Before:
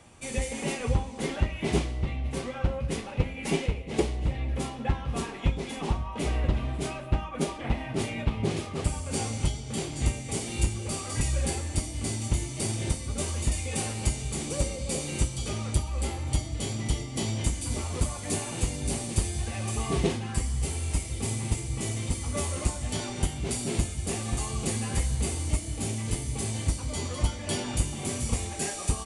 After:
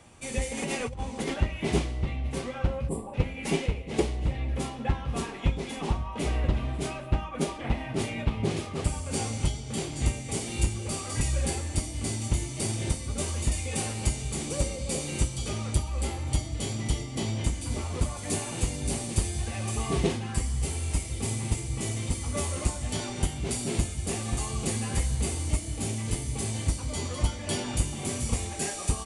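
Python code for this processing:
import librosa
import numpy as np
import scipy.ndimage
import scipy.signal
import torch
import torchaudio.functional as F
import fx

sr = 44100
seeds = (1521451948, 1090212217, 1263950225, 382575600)

y = fx.over_compress(x, sr, threshold_db=-32.0, ratio=-1.0, at=(0.57, 1.34))
y = fx.spec_box(y, sr, start_s=2.88, length_s=0.26, low_hz=1200.0, high_hz=7200.0, gain_db=-21)
y = fx.high_shelf(y, sr, hz=5600.0, db=-6.0, at=(17.15, 18.17))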